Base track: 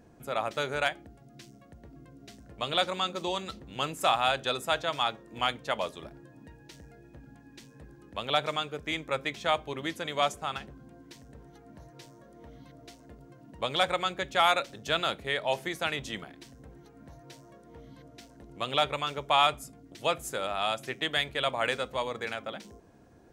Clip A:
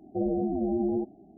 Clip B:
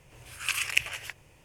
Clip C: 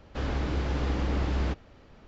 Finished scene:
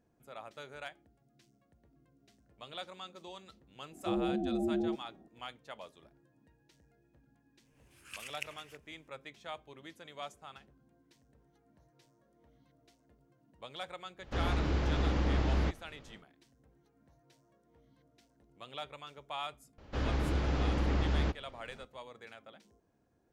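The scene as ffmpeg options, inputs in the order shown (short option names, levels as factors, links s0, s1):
-filter_complex "[3:a]asplit=2[s0][s1];[0:a]volume=0.15[s2];[1:a]atrim=end=1.37,asetpts=PTS-STARTPTS,volume=0.562,afade=t=in:d=0.004:c=hsin,afade=t=out:st=1.366:d=0.004:c=hsin,adelay=3910[s3];[2:a]atrim=end=1.44,asetpts=PTS-STARTPTS,volume=0.141,afade=t=in:d=0.004:c=hsin,afade=t=out:st=1.436:d=0.004:c=hsin,adelay=7650[s4];[s0]atrim=end=2.07,asetpts=PTS-STARTPTS,volume=0.794,afade=t=in:d=0.1,afade=t=out:st=1.97:d=0.1,adelay=14170[s5];[s1]atrim=end=2.07,asetpts=PTS-STARTPTS,volume=0.75,afade=t=in:d=0.004:c=hsin,afade=t=out:st=2.066:d=0.004:c=hsin,adelay=19780[s6];[s2][s3][s4][s5][s6]amix=inputs=5:normalize=0"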